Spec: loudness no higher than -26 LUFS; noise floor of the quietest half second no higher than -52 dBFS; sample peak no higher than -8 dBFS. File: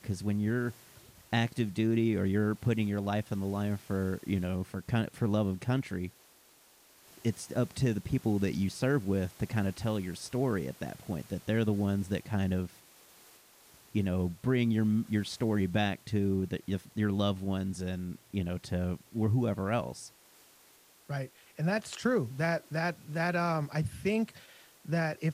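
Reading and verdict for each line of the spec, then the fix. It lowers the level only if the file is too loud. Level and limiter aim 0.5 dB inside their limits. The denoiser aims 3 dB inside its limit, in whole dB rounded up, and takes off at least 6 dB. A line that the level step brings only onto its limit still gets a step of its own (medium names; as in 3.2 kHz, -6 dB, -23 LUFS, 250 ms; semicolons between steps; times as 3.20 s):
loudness -32.0 LUFS: pass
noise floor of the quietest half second -61 dBFS: pass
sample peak -16.0 dBFS: pass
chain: none needed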